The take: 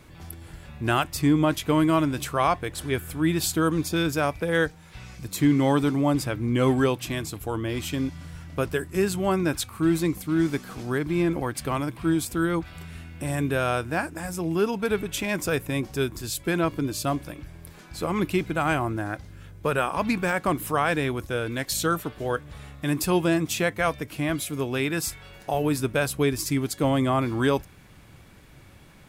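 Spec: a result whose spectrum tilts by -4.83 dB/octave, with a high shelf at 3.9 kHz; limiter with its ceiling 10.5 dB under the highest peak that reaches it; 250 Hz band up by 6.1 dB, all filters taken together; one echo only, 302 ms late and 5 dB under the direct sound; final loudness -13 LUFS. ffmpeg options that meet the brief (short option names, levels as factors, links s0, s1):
-af "equalizer=f=250:t=o:g=8,highshelf=f=3900:g=7.5,alimiter=limit=0.158:level=0:latency=1,aecho=1:1:302:0.562,volume=3.76"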